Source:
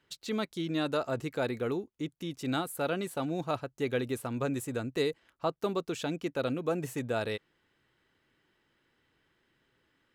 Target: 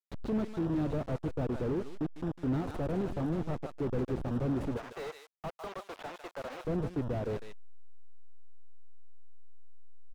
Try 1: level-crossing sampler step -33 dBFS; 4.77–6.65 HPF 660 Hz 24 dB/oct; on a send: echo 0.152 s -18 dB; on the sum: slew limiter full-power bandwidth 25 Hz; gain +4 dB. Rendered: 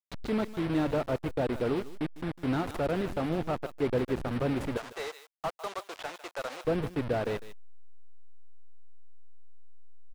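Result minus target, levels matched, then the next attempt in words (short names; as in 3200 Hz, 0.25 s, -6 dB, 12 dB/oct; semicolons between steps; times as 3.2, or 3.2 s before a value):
slew limiter: distortion -8 dB
level-crossing sampler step -33 dBFS; 4.77–6.65 HPF 660 Hz 24 dB/oct; on a send: echo 0.152 s -18 dB; on the sum: slew limiter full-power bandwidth 8 Hz; gain +4 dB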